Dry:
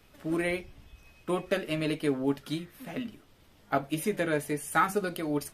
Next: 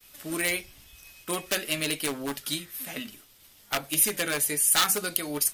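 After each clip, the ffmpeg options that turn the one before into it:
ffmpeg -i in.wav -af "aeval=exprs='0.0841*(abs(mod(val(0)/0.0841+3,4)-2)-1)':channel_layout=same,crystalizer=i=10:c=0,agate=range=-33dB:threshold=-46dB:ratio=3:detection=peak,volume=-4.5dB" out.wav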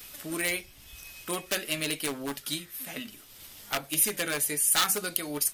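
ffmpeg -i in.wav -af "acompressor=mode=upward:threshold=-35dB:ratio=2.5,volume=-2dB" out.wav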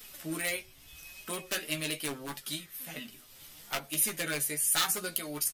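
ffmpeg -i in.wav -filter_complex "[0:a]flanger=delay=4.5:depth=3.7:regen=51:speed=0.77:shape=triangular,asplit=2[link_01][link_02];[link_02]adelay=13,volume=-7dB[link_03];[link_01][link_03]amix=inputs=2:normalize=0" out.wav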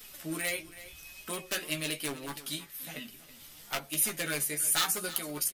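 ffmpeg -i in.wav -af "aecho=1:1:326:0.158" out.wav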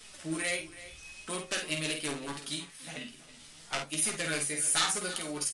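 ffmpeg -i in.wav -filter_complex "[0:a]asplit=2[link_01][link_02];[link_02]adelay=50,volume=-6dB[link_03];[link_01][link_03]amix=inputs=2:normalize=0" -ar 22050 -c:a libvorbis -b:a 64k out.ogg

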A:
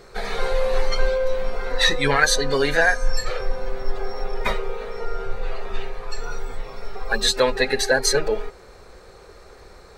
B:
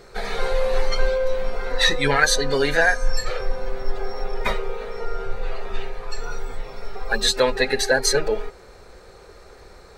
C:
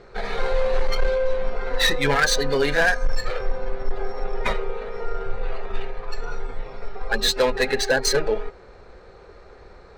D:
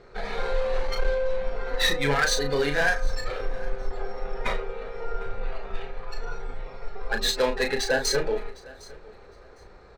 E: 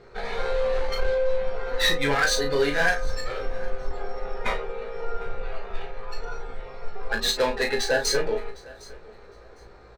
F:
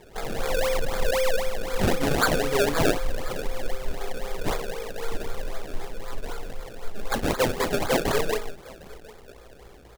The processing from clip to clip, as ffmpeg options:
ffmpeg -i in.wav -af "bandreject=frequency=1100:width=24" out.wav
ffmpeg -i in.wav -af "asoftclip=type=hard:threshold=-12.5dB,adynamicsmooth=sensitivity=2.5:basefreq=3700,aeval=exprs='0.237*(cos(1*acos(clip(val(0)/0.237,-1,1)))-cos(1*PI/2))+0.00531*(cos(8*acos(clip(val(0)/0.237,-1,1)))-cos(8*PI/2))':channel_layout=same" out.wav
ffmpeg -i in.wav -filter_complex "[0:a]asplit=2[link_01][link_02];[link_02]adelay=35,volume=-6.5dB[link_03];[link_01][link_03]amix=inputs=2:normalize=0,aecho=1:1:757|1514:0.0794|0.0159,volume=-4.5dB" out.wav
ffmpeg -i in.wav -filter_complex "[0:a]asplit=2[link_01][link_02];[link_02]adelay=17,volume=-5.5dB[link_03];[link_01][link_03]amix=inputs=2:normalize=0" out.wav
ffmpeg -i in.wav -af "acrusher=samples=30:mix=1:aa=0.000001:lfo=1:lforange=30:lforate=3.9" out.wav

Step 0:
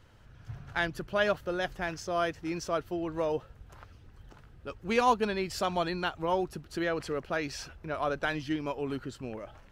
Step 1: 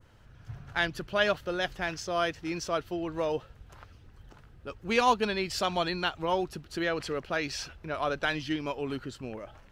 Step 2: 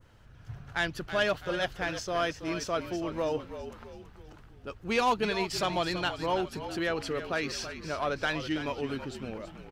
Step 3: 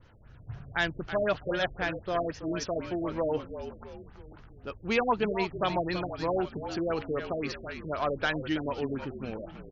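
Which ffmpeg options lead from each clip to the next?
ffmpeg -i in.wav -af "adynamicequalizer=threshold=0.00501:dfrequency=3600:dqfactor=0.72:tfrequency=3600:tqfactor=0.72:attack=5:release=100:ratio=0.375:range=3:mode=boostabove:tftype=bell" out.wav
ffmpeg -i in.wav -filter_complex "[0:a]asoftclip=type=tanh:threshold=-18dB,asplit=2[link_01][link_02];[link_02]asplit=5[link_03][link_04][link_05][link_06][link_07];[link_03]adelay=328,afreqshift=-49,volume=-10.5dB[link_08];[link_04]adelay=656,afreqshift=-98,volume=-17.4dB[link_09];[link_05]adelay=984,afreqshift=-147,volume=-24.4dB[link_10];[link_06]adelay=1312,afreqshift=-196,volume=-31.3dB[link_11];[link_07]adelay=1640,afreqshift=-245,volume=-38.2dB[link_12];[link_08][link_09][link_10][link_11][link_12]amix=inputs=5:normalize=0[link_13];[link_01][link_13]amix=inputs=2:normalize=0" out.wav
ffmpeg -i in.wav -af "afftfilt=real='re*lt(b*sr/1024,630*pow(7400/630,0.5+0.5*sin(2*PI*3.9*pts/sr)))':imag='im*lt(b*sr/1024,630*pow(7400/630,0.5+0.5*sin(2*PI*3.9*pts/sr)))':win_size=1024:overlap=0.75,volume=1.5dB" out.wav

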